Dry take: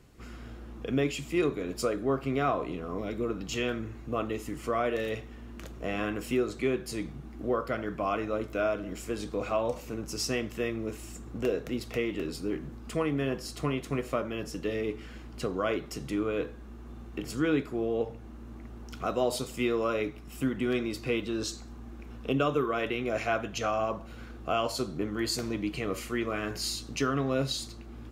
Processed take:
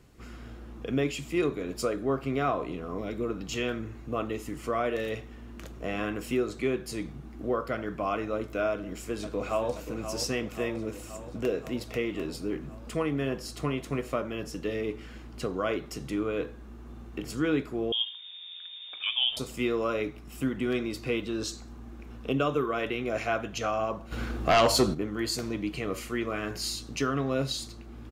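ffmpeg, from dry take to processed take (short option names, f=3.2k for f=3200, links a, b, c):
-filter_complex "[0:a]asplit=2[a][b];[b]afade=t=in:st=8.7:d=0.01,afade=t=out:st=9.74:d=0.01,aecho=0:1:530|1060|1590|2120|2650|3180|3710|4240|4770|5300:0.334965|0.234476|0.164133|0.114893|0.0804252|0.0562976|0.0394083|0.0275858|0.0193101|0.0135171[c];[a][c]amix=inputs=2:normalize=0,asettb=1/sr,asplit=3[d][e][f];[d]atrim=end=17.924[g];[e]atrim=start=17.92:end=19.37,asetpts=PTS-STARTPTS,afade=t=in:d=0.004:c=qsin,afade=t=out:st=1.446:d=0.004:c=qsin,lowpass=f=3.1k:t=q:w=0.5098,lowpass=f=3.1k:t=q:w=0.6013,lowpass=f=3.1k:t=q:w=0.9,lowpass=f=3.1k:t=q:w=2.563,afreqshift=-3700[h];[f]atrim=start=19.366[i];[g][h]acrossfade=d=0.004:c1=hsin:c2=qsin[j];[j][i]acrossfade=d=0.004:c1=qsin:c2=hsin,asplit=3[k][l][m];[k]afade=t=out:st=24.11:d=0.02[n];[l]aeval=exprs='0.168*sin(PI/2*2.24*val(0)/0.168)':c=same,afade=t=in:st=24.11:d=0.02,afade=t=out:st=24.93:d=0.02[o];[m]afade=t=in:st=24.93:d=0.02[p];[n][o][p]amix=inputs=3:normalize=0"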